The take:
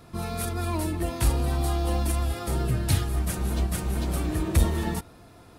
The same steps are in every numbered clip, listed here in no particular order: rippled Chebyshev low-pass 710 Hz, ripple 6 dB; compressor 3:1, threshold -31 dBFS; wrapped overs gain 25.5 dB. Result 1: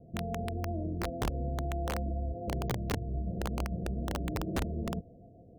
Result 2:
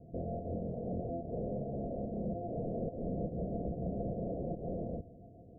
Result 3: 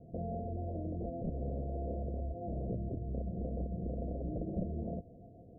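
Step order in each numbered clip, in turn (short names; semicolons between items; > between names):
rippled Chebyshev low-pass > compressor > wrapped overs; wrapped overs > rippled Chebyshev low-pass > compressor; compressor > wrapped overs > rippled Chebyshev low-pass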